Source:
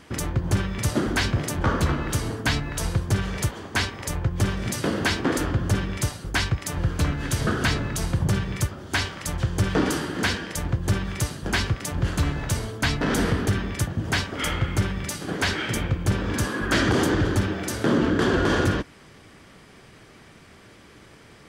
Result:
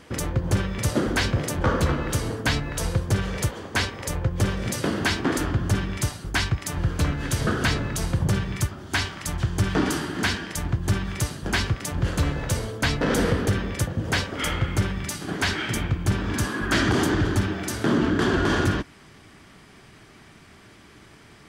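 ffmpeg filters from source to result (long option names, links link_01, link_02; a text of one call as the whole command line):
ffmpeg -i in.wav -af "asetnsamples=nb_out_samples=441:pad=0,asendcmd='4.85 equalizer g -5;6.86 equalizer g 1.5;8.47 equalizer g -8.5;11.14 equalizer g -1.5;12.06 equalizer g 8;14.33 equalizer g 0.5;14.95 equalizer g -8.5',equalizer=frequency=510:width_type=o:width=0.26:gain=6.5" out.wav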